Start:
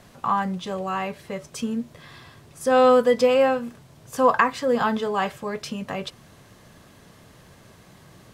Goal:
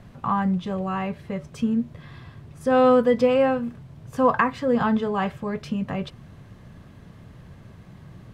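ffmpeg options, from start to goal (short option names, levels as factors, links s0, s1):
-af "bass=f=250:g=11,treble=f=4000:g=-10,volume=0.794"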